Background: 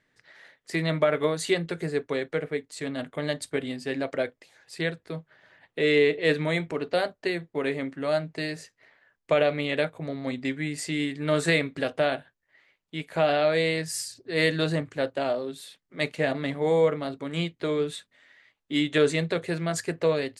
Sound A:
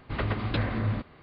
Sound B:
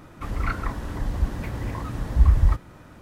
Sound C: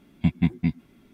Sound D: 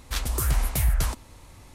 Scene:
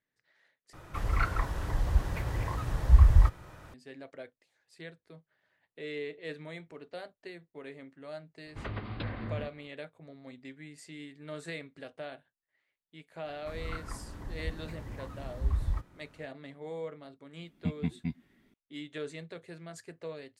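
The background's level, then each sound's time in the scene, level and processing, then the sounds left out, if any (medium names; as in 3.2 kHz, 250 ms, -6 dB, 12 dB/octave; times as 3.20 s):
background -17.5 dB
0.73 s: replace with B -1.5 dB + peaking EQ 240 Hz -11 dB
8.46 s: add A -9 dB
13.25 s: add B -13 dB
17.41 s: add C -11 dB
not used: D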